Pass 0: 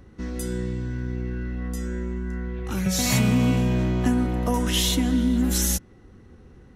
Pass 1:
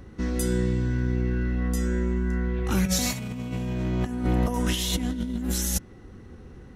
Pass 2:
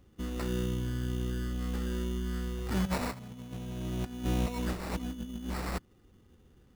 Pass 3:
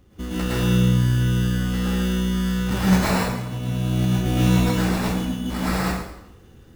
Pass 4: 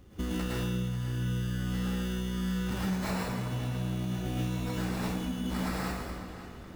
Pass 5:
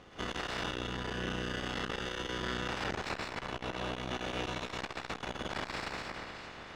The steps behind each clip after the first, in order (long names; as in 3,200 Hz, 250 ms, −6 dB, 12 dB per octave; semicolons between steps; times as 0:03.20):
compressor whose output falls as the input rises −25 dBFS, ratio −0.5; level +1 dB
sample-rate reduction 3,200 Hz, jitter 0%; expander for the loud parts 1.5 to 1, over −40 dBFS; level −6 dB
dense smooth reverb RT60 0.83 s, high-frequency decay 0.9×, pre-delay 95 ms, DRR −7 dB; level +5.5 dB
downward compressor 12 to 1, threshold −29 dBFS, peak gain reduction 17 dB; tape delay 545 ms, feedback 54%, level −11 dB, low-pass 4,900 Hz
ceiling on every frequency bin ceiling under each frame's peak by 24 dB; high-frequency loss of the air 130 metres; saturating transformer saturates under 860 Hz